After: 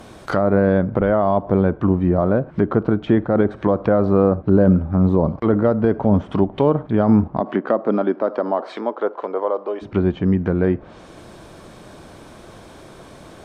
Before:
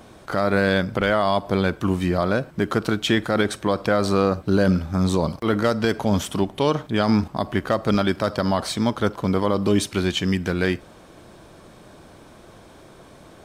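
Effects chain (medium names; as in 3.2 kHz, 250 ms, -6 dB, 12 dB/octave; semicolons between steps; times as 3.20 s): low-pass that closes with the level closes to 830 Hz, closed at -19.5 dBFS; 7.39–9.81 s: high-pass 190 Hz -> 530 Hz 24 dB/octave; trim +5 dB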